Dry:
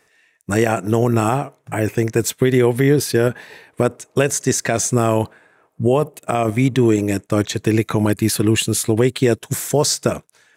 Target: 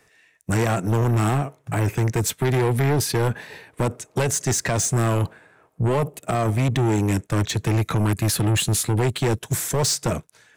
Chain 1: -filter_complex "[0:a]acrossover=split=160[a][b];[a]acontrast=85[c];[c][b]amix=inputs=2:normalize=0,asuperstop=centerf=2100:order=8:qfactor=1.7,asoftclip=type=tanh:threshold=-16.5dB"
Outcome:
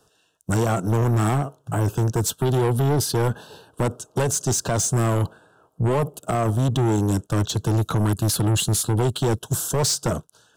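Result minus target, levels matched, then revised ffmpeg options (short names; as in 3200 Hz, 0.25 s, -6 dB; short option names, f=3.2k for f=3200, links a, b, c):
2000 Hz band -4.5 dB
-filter_complex "[0:a]acrossover=split=160[a][b];[a]acontrast=85[c];[c][b]amix=inputs=2:normalize=0,asoftclip=type=tanh:threshold=-16.5dB"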